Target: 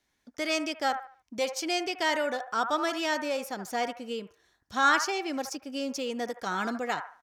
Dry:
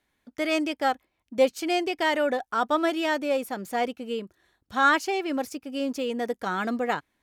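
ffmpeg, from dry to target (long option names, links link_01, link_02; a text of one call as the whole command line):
ffmpeg -i in.wav -filter_complex "[0:a]equalizer=frequency=5700:width_type=o:width=0.78:gain=10.5,acrossover=split=720|1900[link_01][link_02][link_03];[link_01]alimiter=level_in=1dB:limit=-24dB:level=0:latency=1:release=293,volume=-1dB[link_04];[link_02]aecho=1:1:74|148|222|296:0.631|0.189|0.0568|0.017[link_05];[link_04][link_05][link_03]amix=inputs=3:normalize=0,volume=-3dB" out.wav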